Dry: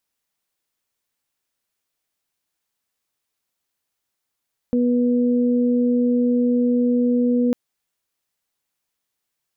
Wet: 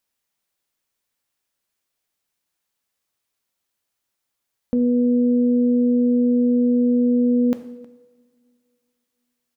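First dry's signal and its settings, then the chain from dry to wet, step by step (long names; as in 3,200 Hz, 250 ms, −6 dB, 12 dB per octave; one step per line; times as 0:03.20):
steady harmonic partials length 2.80 s, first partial 244 Hz, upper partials −6.5 dB, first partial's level −16 dB
slap from a distant wall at 54 metres, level −22 dB
coupled-rooms reverb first 0.72 s, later 2.6 s, from −19 dB, DRR 9 dB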